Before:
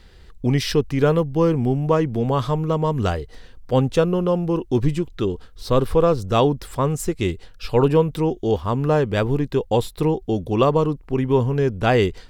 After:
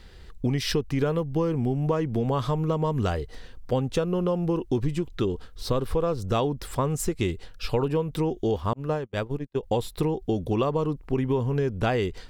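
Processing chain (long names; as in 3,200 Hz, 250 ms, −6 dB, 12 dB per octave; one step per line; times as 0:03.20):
downward compressor 8 to 1, threshold −21 dBFS, peak gain reduction 10.5 dB
0:08.73–0:09.63: noise gate −23 dBFS, range −40 dB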